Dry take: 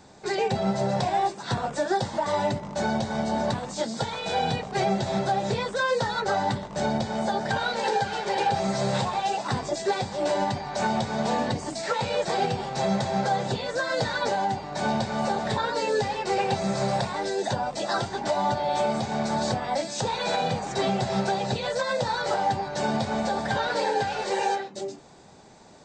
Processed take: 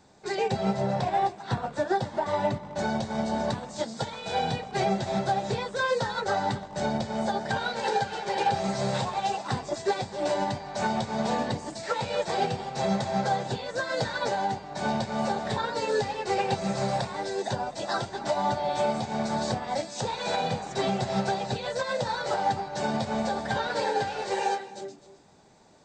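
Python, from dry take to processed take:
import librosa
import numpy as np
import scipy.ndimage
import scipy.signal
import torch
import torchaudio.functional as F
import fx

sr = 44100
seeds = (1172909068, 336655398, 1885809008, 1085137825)

y = fx.bass_treble(x, sr, bass_db=1, treble_db=-7, at=(0.76, 2.79))
y = y + 10.0 ** (-13.5 / 20.0) * np.pad(y, (int(259 * sr / 1000.0), 0))[:len(y)]
y = fx.upward_expand(y, sr, threshold_db=-34.0, expansion=1.5)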